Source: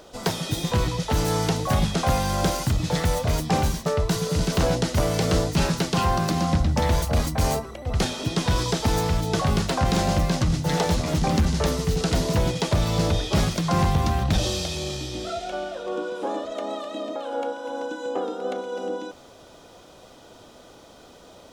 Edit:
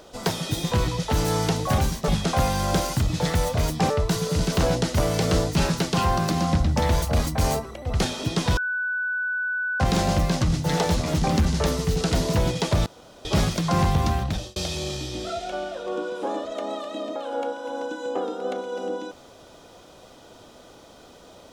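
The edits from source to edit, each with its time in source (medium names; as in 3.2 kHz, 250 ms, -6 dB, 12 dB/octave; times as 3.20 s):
3.60–3.90 s: move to 1.78 s
8.57–9.80 s: bleep 1.49 kHz -23.5 dBFS
12.86–13.25 s: room tone
14.12–14.56 s: fade out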